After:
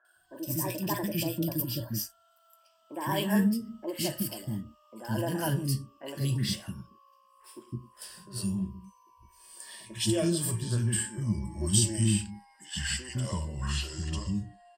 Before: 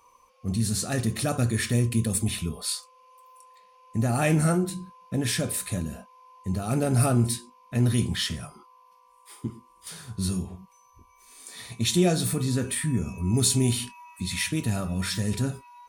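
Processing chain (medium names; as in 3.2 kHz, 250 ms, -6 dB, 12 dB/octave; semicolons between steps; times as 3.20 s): gliding tape speed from 143% -> 72%; rippled EQ curve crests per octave 1.3, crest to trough 11 dB; three bands offset in time mids, highs, lows 50/160 ms, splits 340/1700 Hz; trim -5 dB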